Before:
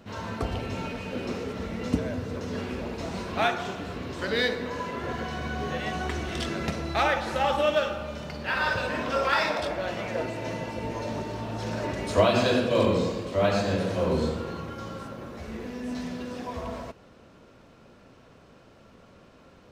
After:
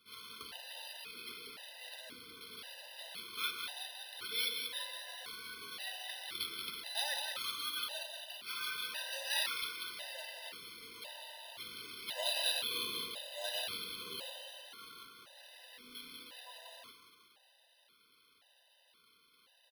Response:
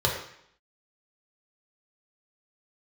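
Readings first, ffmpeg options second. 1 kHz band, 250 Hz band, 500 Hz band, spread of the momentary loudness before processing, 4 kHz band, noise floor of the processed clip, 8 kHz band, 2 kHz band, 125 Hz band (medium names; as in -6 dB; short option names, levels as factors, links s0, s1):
-19.0 dB, -30.5 dB, -24.0 dB, 12 LU, -1.5 dB, -69 dBFS, 0.0 dB, -12.0 dB, under -35 dB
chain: -filter_complex "[0:a]bandpass=f=4000:t=q:w=2.9:csg=0,asplit=7[s0][s1][s2][s3][s4][s5][s6];[s1]adelay=183,afreqshift=32,volume=0.473[s7];[s2]adelay=366,afreqshift=64,volume=0.245[s8];[s3]adelay=549,afreqshift=96,volume=0.127[s9];[s4]adelay=732,afreqshift=128,volume=0.0668[s10];[s5]adelay=915,afreqshift=160,volume=0.0347[s11];[s6]adelay=1098,afreqshift=192,volume=0.018[s12];[s0][s7][s8][s9][s10][s11][s12]amix=inputs=7:normalize=0,acrusher=samples=6:mix=1:aa=0.000001,afftfilt=real='re*gt(sin(2*PI*0.95*pts/sr)*(1-2*mod(floor(b*sr/1024/510),2)),0)':imag='im*gt(sin(2*PI*0.95*pts/sr)*(1-2*mod(floor(b*sr/1024/510),2)),0)':win_size=1024:overlap=0.75,volume=1.68"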